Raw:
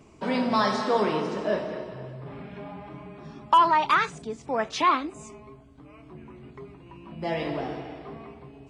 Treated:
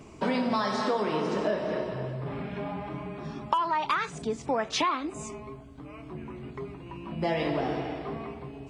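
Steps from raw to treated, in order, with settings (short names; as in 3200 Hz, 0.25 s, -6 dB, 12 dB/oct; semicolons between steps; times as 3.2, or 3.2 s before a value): compressor 8:1, threshold -29 dBFS, peak gain reduction 15 dB; gain +5 dB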